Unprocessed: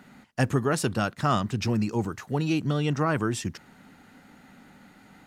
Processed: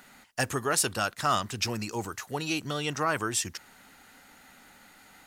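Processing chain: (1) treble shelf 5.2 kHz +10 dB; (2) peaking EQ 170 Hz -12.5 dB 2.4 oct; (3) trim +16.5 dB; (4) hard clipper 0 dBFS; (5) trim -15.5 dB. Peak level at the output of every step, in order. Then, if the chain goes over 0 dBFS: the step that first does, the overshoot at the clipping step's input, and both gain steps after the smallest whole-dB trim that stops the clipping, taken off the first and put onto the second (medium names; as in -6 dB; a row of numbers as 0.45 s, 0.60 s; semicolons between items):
-8.0 dBFS, -11.5 dBFS, +5.0 dBFS, 0.0 dBFS, -15.5 dBFS; step 3, 5.0 dB; step 3 +11.5 dB, step 5 -10.5 dB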